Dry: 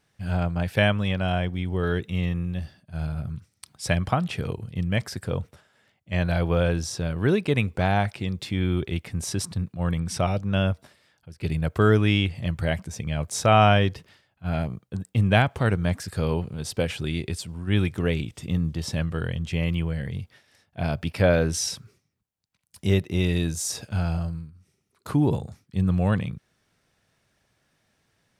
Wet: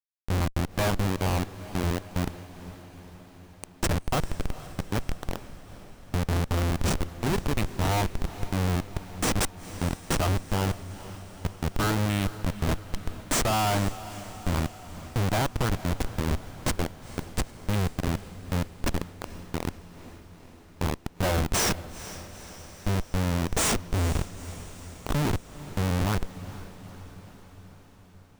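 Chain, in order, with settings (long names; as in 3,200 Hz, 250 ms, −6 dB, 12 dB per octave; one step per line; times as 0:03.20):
graphic EQ with 10 bands 125 Hz −7 dB, 250 Hz −7 dB, 500 Hz −8 dB, 1,000 Hz +8 dB, 2,000 Hz −7 dB, 4,000 Hz −6 dB, 8,000 Hz +6 dB
comparator with hysteresis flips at −26.5 dBFS
on a send: feedback delay with all-pass diffusion 462 ms, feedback 64%, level −15 dB
on the sum: level +6.5 dB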